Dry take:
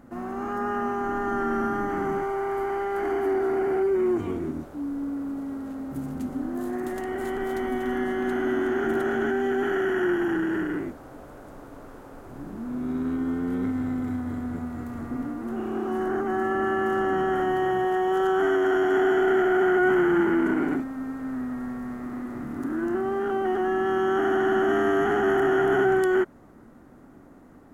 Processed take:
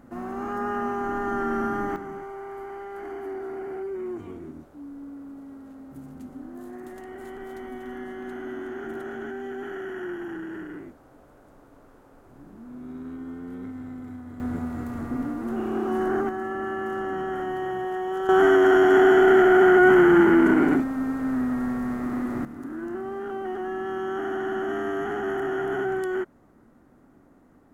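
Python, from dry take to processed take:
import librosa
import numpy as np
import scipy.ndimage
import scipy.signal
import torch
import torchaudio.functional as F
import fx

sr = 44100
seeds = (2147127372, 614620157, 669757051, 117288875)

y = fx.gain(x, sr, db=fx.steps((0.0, -0.5), (1.96, -9.5), (14.4, 2.0), (16.29, -5.0), (18.29, 5.5), (22.45, -6.0)))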